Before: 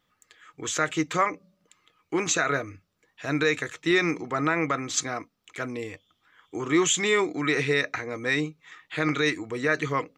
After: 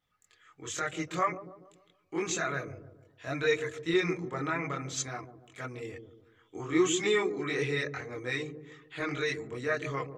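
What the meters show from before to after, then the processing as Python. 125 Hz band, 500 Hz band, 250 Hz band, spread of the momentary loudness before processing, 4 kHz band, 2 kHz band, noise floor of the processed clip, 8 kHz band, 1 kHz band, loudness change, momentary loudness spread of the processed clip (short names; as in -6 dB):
-4.5 dB, -4.0 dB, -6.0 dB, 13 LU, -7.0 dB, -7.5 dB, -69 dBFS, -8.0 dB, -6.5 dB, -6.0 dB, 17 LU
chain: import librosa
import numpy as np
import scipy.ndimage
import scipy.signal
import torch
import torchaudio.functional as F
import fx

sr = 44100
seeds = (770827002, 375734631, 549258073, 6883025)

y = fx.chorus_voices(x, sr, voices=6, hz=0.59, base_ms=23, depth_ms=1.5, mix_pct=55)
y = fx.echo_wet_lowpass(y, sr, ms=144, feedback_pct=43, hz=510.0, wet_db=-7.0)
y = F.gain(torch.from_numpy(y), -4.5).numpy()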